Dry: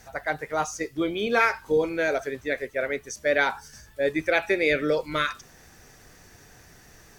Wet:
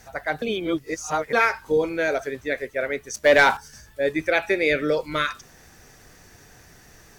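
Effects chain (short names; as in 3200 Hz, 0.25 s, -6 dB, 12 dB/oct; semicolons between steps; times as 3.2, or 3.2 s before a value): 0.42–1.33 reverse; 3.14–3.57 sample leveller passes 2; gain +1.5 dB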